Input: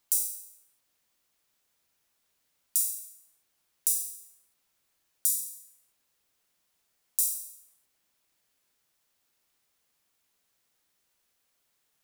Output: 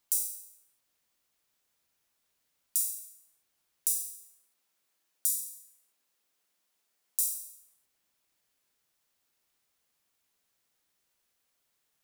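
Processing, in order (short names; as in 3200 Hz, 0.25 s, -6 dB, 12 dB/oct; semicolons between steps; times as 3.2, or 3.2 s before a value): 4.01–7.25 HPF 190 Hz 12 dB/oct; gain -2.5 dB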